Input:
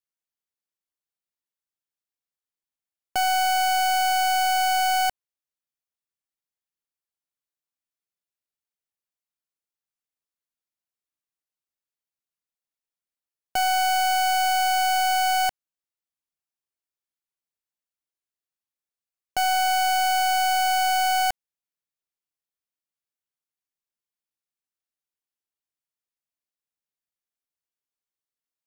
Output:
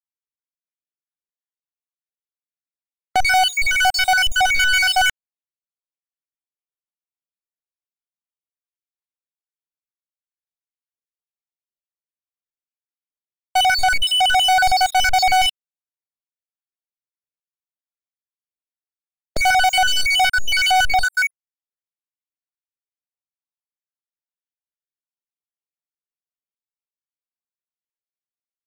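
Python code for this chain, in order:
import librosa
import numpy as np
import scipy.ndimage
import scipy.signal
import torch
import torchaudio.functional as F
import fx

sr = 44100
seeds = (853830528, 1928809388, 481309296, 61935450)

y = fx.spec_dropout(x, sr, seeds[0], share_pct=73)
y = scipy.signal.sosfilt(scipy.signal.butter(2, 3800.0, 'lowpass', fs=sr, output='sos'), y)
y = fx.leveller(y, sr, passes=5)
y = y * librosa.db_to_amplitude(4.0)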